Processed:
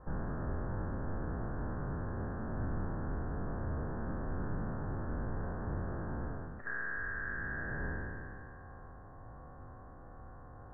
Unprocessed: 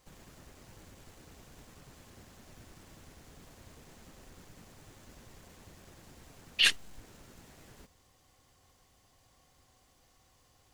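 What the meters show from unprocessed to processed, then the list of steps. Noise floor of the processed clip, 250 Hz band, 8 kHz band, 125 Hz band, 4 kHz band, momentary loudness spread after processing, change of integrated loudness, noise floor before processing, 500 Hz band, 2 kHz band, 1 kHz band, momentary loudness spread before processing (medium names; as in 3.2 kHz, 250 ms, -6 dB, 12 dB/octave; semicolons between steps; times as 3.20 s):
-51 dBFS, +16.5 dB, under -35 dB, +18.5 dB, under -40 dB, 15 LU, -12.0 dB, -67 dBFS, +14.5 dB, -0.5 dB, +12.0 dB, 10 LU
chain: spectral sustain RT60 2.59 s; reverse; compression 8:1, threshold -39 dBFS, peak gain reduction 22.5 dB; reverse; steep low-pass 1.7 kHz 96 dB/octave; bass shelf 200 Hz +4 dB; decay stretcher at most 28 dB/s; trim +11 dB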